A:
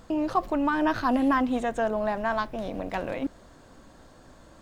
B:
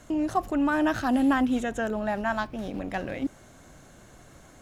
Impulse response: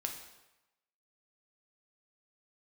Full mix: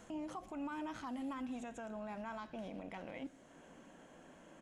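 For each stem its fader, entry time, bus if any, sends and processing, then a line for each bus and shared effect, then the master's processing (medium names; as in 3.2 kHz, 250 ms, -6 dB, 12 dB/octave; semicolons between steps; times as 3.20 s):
-5.0 dB, 0.00 s, no send, FFT band-pass 150–3400 Hz; peaking EQ 1.2 kHz -5.5 dB 0.46 oct; compression 2:1, threshold -43 dBFS, peak gain reduction 13 dB
-13.5 dB, 0.5 ms, send -14.5 dB, low-pass 10 kHz 24 dB/octave; auto duck -11 dB, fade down 0.25 s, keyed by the first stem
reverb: on, RT60 0.95 s, pre-delay 4 ms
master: treble shelf 3.5 kHz +8.5 dB; peak limiter -36 dBFS, peak gain reduction 8 dB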